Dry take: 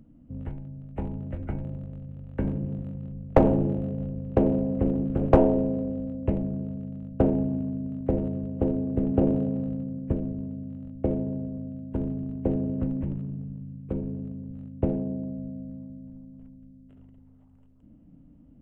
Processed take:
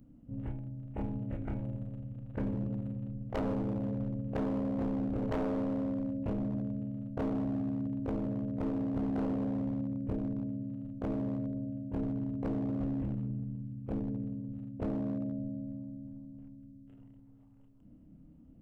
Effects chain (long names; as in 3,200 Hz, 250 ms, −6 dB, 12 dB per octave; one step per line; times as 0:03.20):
every overlapping window played backwards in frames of 60 ms
downward compressor 2.5 to 1, threshold −29 dBFS, peak gain reduction 10 dB
gain into a clipping stage and back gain 29 dB